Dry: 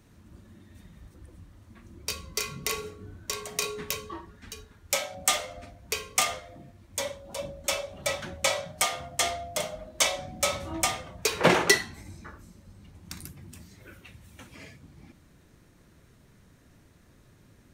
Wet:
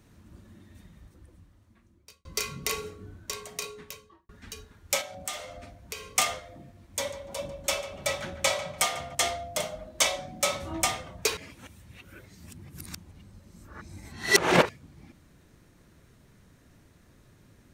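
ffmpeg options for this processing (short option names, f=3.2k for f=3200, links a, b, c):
-filter_complex "[0:a]asettb=1/sr,asplit=3[a][b][c];[a]atrim=end=5.014[d];[b]atrim=start=5.01:end=6.09,asetpts=PTS-STARTPTS,afade=t=in:d=0.004:c=qsin,afade=t=out:st=1.076:d=0.004:c=qsin,acompressor=threshold=-39dB:ratio=2:attack=3.2:release=140:knee=1:detection=peak[e];[c]atrim=start=6.086[f];[d][e]acrossfade=d=0.004:c1=hsin:c2=qsin[g];[g][f]acrossfade=d=0.004:c1=qsin:c2=hsin,asettb=1/sr,asplit=3[h][i][j];[h]atrim=end=6.624[k];[i]atrim=start=6.62:end=9.15,asetpts=PTS-STARTPTS,afade=t=in:d=0.004:c=qsin,afade=t=out:st=2.526:d=0.004:c=qsin,asplit=2[l][m];[m]adelay=146,lowpass=f=2.5k:p=1,volume=-11.5dB,asplit=2[n][o];[o]adelay=146,lowpass=f=2.5k:p=1,volume=0.36,asplit=2[p][q];[q]adelay=146,lowpass=f=2.5k:p=1,volume=0.36,asplit=2[r][s];[s]adelay=146,lowpass=f=2.5k:p=1,volume=0.36[t];[l][n][p][r][t]amix=inputs=5:normalize=0,atrim=end_sample=111573[u];[j]atrim=start=9.146[v];[k][u]acrossfade=d=0.004:c1=hsin:c2=qsin[w];[w][v]acrossfade=d=0.004:c1=qsin:c2=hsin,asettb=1/sr,asplit=3[x][y][z];[x]atrim=end=10.174[aa];[y]atrim=start=10.17:end=10.62,asetpts=PTS-STARTPTS,afade=t=in:d=0.004:c=qsin,afade=t=out:st=0.446:d=0.004:c=qsin,equalizer=f=70:w=2:g=-12[ab];[z]atrim=start=10.616[ac];[aa][ab]acrossfade=d=0.004:c1=hsin:c2=qsin[ad];[ad][ac]acrossfade=d=0.004:c1=qsin:c2=hsin,asplit=5[ae][af][ag][ah][ai];[ae]atrim=end=2.25,asetpts=PTS-STARTPTS,afade=t=out:st=0.65:d=1.6[aj];[af]atrim=start=2.25:end=4.29,asetpts=PTS-STARTPTS,afade=t=in:d=0.004:c=hsin,afade=t=out:st=0.71:d=1.33[ak];[ag]atrim=start=4.29:end=11.372,asetpts=PTS-STARTPTS,afade=t=in:d=0.004:c=hsin[al];[ah]atrim=start=11.368:end=14.692,asetpts=PTS-STARTPTS,areverse[am];[ai]atrim=start=14.688[an];[aj][ak][al]concat=n=3:v=0:a=1[ao];[ao][am]acrossfade=d=0.004:c1=hsin:c2=hsin[ap];[ap][an]acrossfade=d=0.004:c1=hsin:c2=hsin"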